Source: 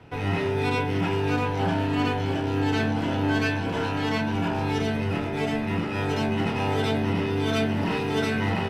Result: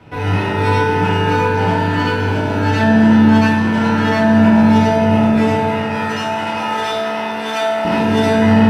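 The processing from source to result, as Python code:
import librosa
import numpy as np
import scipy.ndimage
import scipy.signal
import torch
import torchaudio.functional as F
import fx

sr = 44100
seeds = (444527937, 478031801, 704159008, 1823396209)

y = fx.highpass(x, sr, hz=680.0, slope=12, at=(5.55, 7.85))
y = fx.rev_fdn(y, sr, rt60_s=3.0, lf_ratio=1.3, hf_ratio=0.3, size_ms=10.0, drr_db=-6.0)
y = y * librosa.db_to_amplitude(4.0)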